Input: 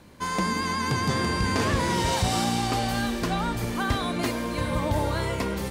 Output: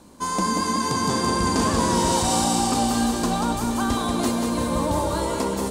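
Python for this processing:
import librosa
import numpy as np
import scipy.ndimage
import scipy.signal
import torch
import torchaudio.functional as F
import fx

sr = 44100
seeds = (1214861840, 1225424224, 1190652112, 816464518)

y = fx.graphic_eq(x, sr, hz=(125, 250, 1000, 2000, 8000), db=(-6, 6, 5, -8, 9))
y = fx.echo_feedback(y, sr, ms=187, feedback_pct=55, wet_db=-5)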